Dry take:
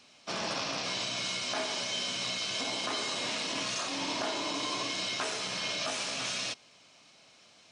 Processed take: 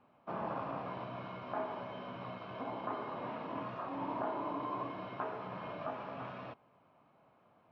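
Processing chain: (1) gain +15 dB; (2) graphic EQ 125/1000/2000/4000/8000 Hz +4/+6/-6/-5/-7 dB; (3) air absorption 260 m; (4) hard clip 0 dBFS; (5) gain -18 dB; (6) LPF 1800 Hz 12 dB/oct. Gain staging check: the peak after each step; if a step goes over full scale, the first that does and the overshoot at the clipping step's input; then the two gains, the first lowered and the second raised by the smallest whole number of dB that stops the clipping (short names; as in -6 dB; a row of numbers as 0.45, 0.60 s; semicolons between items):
-5.0, -4.0, -5.5, -5.5, -23.5, -24.0 dBFS; no overload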